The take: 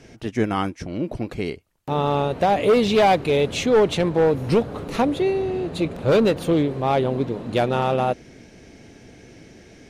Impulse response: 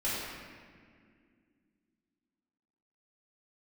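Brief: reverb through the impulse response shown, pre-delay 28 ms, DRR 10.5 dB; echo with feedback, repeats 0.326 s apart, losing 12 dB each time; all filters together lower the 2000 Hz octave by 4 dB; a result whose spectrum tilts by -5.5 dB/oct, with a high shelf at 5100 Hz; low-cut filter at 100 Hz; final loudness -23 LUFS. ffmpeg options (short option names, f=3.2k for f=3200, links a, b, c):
-filter_complex "[0:a]highpass=100,equalizer=f=2k:t=o:g=-6,highshelf=f=5.1k:g=3.5,aecho=1:1:326|652|978:0.251|0.0628|0.0157,asplit=2[a][b];[1:a]atrim=start_sample=2205,adelay=28[c];[b][c]afir=irnorm=-1:irlink=0,volume=-18.5dB[d];[a][d]amix=inputs=2:normalize=0,volume=-2dB"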